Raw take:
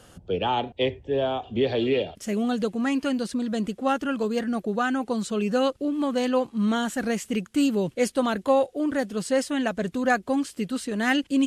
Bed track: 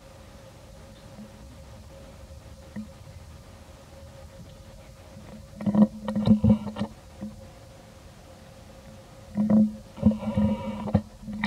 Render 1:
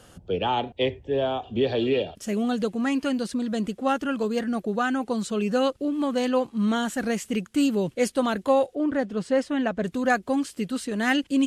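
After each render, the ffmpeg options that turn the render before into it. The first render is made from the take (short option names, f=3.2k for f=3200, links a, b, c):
-filter_complex "[0:a]asettb=1/sr,asplit=3[a][b][c];[a]atrim=end=1.314[d];[b]atrim=start=1.31:end=2.3,asetpts=PTS-STARTPTS,afade=t=in:d=0.004:c=qsin,afade=t=out:st=0.986:d=0.004:c=qsin,bandreject=f=2.1k:w=9[e];[c]atrim=start=2.296[f];[d][e]acrossfade=d=0.004:c1=hsin:c2=qsin[g];[g][f]acrossfade=d=0.004:c1=qsin:c2=hsin,asettb=1/sr,asplit=3[h][i][j];[h]atrim=end=8.754[k];[i]atrim=start=8.75:end=9.84,asetpts=PTS-STARTPTS,afade=t=in:d=0.004:c=qsin,afade=t=out:st=1.086:d=0.004:c=qsin,aemphasis=mode=reproduction:type=75fm[l];[j]atrim=start=9.836[m];[k][l]acrossfade=d=0.004:c1=hsin:c2=qsin[n];[n][m]acrossfade=d=0.004:c1=qsin:c2=hsin"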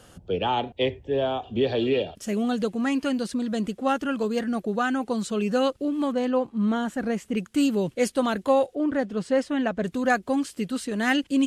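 -filter_complex "[0:a]asettb=1/sr,asplit=3[a][b][c];[a]atrim=end=6.124[d];[b]atrim=start=6.12:end=7.37,asetpts=PTS-STARTPTS,afade=t=in:d=0.004:c=qsin,afade=t=out:st=1.246:d=0.004:c=qsin,highshelf=f=2.4k:g=-11[e];[c]atrim=start=7.366[f];[d][e]acrossfade=d=0.004:c1=hsin:c2=qsin[g];[g][f]acrossfade=d=0.004:c1=qsin:c2=hsin"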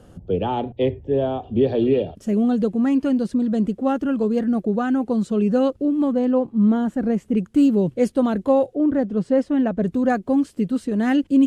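-af "tiltshelf=f=820:g=8.5,bandreject=f=60:t=h:w=6,bandreject=f=120:t=h:w=6"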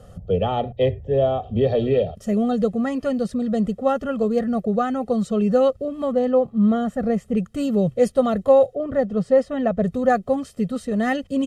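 -af "bandreject=f=2.5k:w=22,aecho=1:1:1.6:0.83"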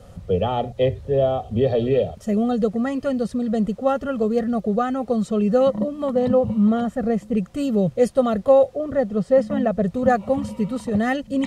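-filter_complex "[1:a]volume=-7dB[a];[0:a][a]amix=inputs=2:normalize=0"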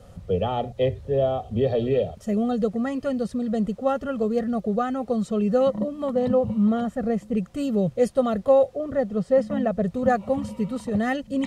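-af "volume=-3dB"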